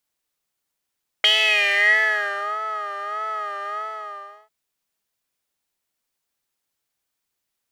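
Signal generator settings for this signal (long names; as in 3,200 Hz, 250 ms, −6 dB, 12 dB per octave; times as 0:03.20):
subtractive patch with vibrato G#4, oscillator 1 saw, oscillator 2 square, interval +7 semitones, detune 26 cents, oscillator 2 level −4 dB, sub −30 dB, noise −12 dB, filter bandpass, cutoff 1,100 Hz, Q 9.1, filter envelope 1.5 octaves, filter decay 1.21 s, filter sustain 15%, attack 1.1 ms, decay 1.34 s, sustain −15 dB, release 0.79 s, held 2.46 s, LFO 1.6 Hz, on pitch 70 cents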